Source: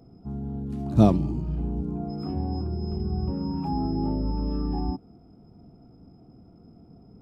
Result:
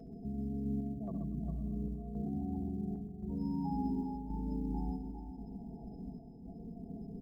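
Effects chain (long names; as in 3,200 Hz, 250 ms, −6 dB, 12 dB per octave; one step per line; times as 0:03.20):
loose part that buzzes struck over −20 dBFS, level −22 dBFS
downward compressor 4 to 1, threshold −42 dBFS, peak gain reduction 25 dB
gate on every frequency bin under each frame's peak −20 dB strong
comb filter 4.6 ms, depth 60%
feedback delay with all-pass diffusion 523 ms, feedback 57%, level −14 dB
square-wave tremolo 0.93 Hz, depth 65%, duty 75%
0:01.91–0:03.36: low-pass filter 1,600 Hz → 2,400 Hz 24 dB per octave
multi-tap delay 69/130/238/404 ms −9.5/−8/−19/−7.5 dB
floating-point word with a short mantissa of 6 bits
level +1.5 dB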